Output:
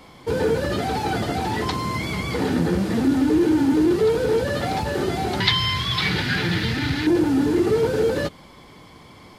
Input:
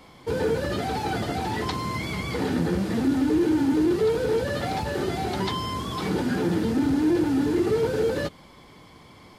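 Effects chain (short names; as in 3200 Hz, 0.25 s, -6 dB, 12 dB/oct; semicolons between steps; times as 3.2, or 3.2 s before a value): 5.4–7.07 graphic EQ 125/250/500/1000/2000/4000/8000 Hz +8/-10/-6/-3/+11/+11/-5 dB; gain +3.5 dB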